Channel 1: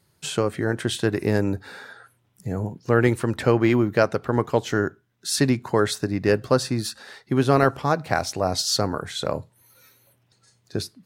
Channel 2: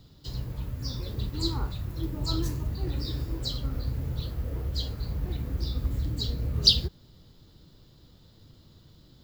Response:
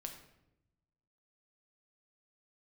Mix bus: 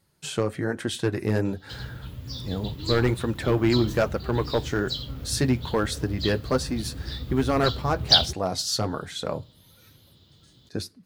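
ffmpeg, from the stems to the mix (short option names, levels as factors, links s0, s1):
-filter_complex "[0:a]flanger=delay=3.6:depth=5.3:regen=-46:speed=1.2:shape=sinusoidal,asoftclip=type=hard:threshold=0.178,volume=1,asplit=2[s0][s1];[s1]volume=0.0708[s2];[1:a]highpass=80,equalizer=f=3300:t=o:w=0.68:g=10.5,adelay=1450,volume=0.708[s3];[2:a]atrim=start_sample=2205[s4];[s2][s4]afir=irnorm=-1:irlink=0[s5];[s0][s3][s5]amix=inputs=3:normalize=0,lowshelf=f=86:g=5.5"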